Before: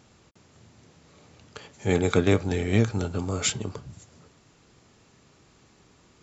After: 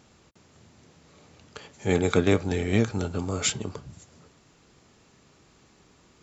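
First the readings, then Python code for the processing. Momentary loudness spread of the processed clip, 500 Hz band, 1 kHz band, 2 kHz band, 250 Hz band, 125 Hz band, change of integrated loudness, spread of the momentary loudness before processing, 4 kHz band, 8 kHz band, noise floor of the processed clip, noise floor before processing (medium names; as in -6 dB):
12 LU, 0.0 dB, 0.0 dB, 0.0 dB, 0.0 dB, -2.0 dB, -0.5 dB, 12 LU, 0.0 dB, no reading, -60 dBFS, -59 dBFS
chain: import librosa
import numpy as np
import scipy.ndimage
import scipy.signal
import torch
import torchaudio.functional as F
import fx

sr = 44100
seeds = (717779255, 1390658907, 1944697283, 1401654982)

y = fx.peak_eq(x, sr, hz=110.0, db=-4.0, octaves=0.36)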